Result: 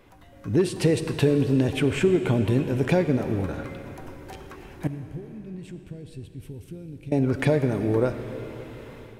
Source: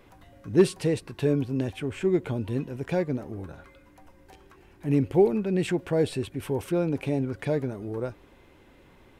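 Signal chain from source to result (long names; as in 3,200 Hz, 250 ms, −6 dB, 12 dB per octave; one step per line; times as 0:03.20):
downward compressor 6 to 1, threshold −27 dBFS, peak gain reduction 13.5 dB
0:04.87–0:07.12: guitar amp tone stack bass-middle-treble 10-0-1
automatic gain control gain up to 10 dB
comb and all-pass reverb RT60 4 s, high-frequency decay 0.95×, pre-delay 10 ms, DRR 9 dB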